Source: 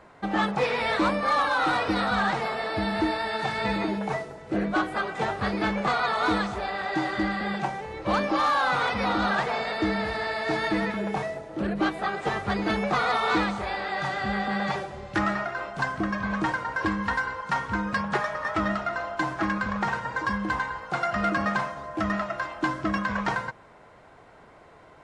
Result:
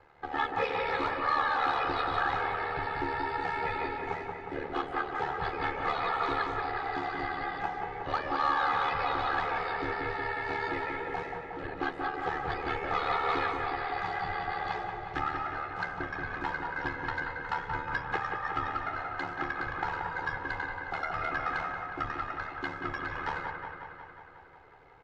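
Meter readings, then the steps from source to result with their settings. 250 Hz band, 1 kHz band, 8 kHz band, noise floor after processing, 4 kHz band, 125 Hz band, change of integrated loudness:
-13.5 dB, -3.5 dB, under -15 dB, -48 dBFS, -8.5 dB, -8.5 dB, -5.5 dB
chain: LPF 4100 Hz 12 dB/oct; bell 310 Hz -6 dB 1.2 oct; comb 2.4 ms, depth 93%; ring modulator 37 Hz; dark delay 0.181 s, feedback 67%, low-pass 2500 Hz, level -4.5 dB; gain -5.5 dB

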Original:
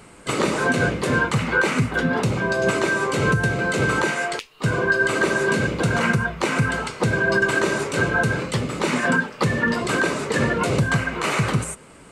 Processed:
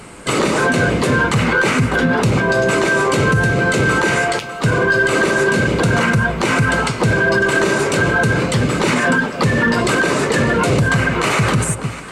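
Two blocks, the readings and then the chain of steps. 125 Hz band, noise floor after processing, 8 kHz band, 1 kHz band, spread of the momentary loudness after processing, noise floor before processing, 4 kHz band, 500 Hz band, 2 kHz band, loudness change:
+6.0 dB, -28 dBFS, +6.5 dB, +6.0 dB, 2 LU, -46 dBFS, +6.5 dB, +6.0 dB, +5.5 dB, +6.0 dB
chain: echo with dull and thin repeats by turns 0.3 s, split 900 Hz, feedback 61%, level -13.5 dB; in parallel at -8 dB: one-sided clip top -23 dBFS, bottom -13.5 dBFS; on the sum: limiter -13.5 dBFS, peak gain reduction 7 dB; gain +6.5 dB

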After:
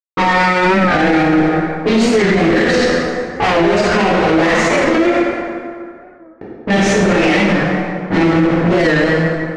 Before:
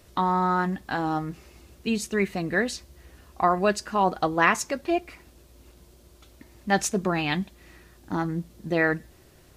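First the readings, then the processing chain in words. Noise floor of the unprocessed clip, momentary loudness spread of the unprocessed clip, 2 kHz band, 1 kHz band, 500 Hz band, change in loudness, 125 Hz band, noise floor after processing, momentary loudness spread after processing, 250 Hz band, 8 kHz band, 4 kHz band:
-55 dBFS, 11 LU, +13.5 dB, +9.5 dB, +15.0 dB, +12.5 dB, +14.0 dB, -38 dBFS, 6 LU, +15.5 dB, +6.5 dB, +14.5 dB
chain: fuzz box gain 39 dB, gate -39 dBFS; notches 50/100/150/200 Hz; low-pass opened by the level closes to 540 Hz, open at -13 dBFS; graphic EQ 500/1000/2000 Hz +10/-5/+9 dB; sample leveller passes 3; air absorption 130 m; plate-style reverb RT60 2.2 s, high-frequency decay 0.55×, DRR -8.5 dB; maximiser -6.5 dB; record warp 45 rpm, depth 100 cents; gain -3.5 dB

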